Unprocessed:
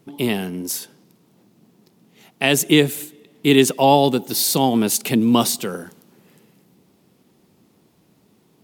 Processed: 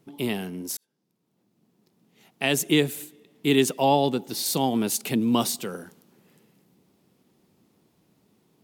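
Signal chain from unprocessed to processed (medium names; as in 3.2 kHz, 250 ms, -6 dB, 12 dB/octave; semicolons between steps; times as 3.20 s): 0.77–2.46 s: fade in; 3.88–4.46 s: treble shelf 9.4 kHz -9 dB; trim -6.5 dB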